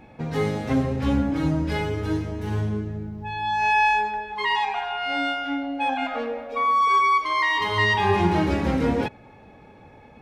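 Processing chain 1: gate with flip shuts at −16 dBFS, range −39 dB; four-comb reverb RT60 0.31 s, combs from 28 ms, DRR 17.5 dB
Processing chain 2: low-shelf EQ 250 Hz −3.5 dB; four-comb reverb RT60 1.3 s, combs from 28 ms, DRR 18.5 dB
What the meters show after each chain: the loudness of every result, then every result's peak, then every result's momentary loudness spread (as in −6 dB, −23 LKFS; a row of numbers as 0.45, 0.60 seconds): −31.0, −24.0 LKFS; −15.0, −10.0 dBFS; 19, 11 LU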